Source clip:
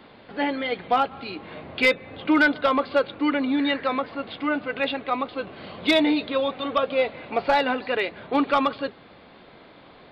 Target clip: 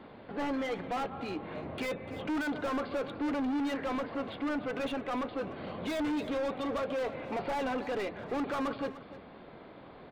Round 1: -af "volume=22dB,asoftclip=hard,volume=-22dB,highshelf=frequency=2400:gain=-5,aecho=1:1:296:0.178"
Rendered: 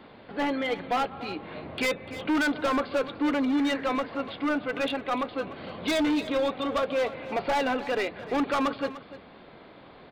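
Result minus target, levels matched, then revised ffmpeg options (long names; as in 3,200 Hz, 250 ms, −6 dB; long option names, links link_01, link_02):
4,000 Hz band +3.5 dB; gain into a clipping stage and back: distortion −5 dB
-af "volume=29.5dB,asoftclip=hard,volume=-29.5dB,highshelf=frequency=2400:gain=-14,aecho=1:1:296:0.178"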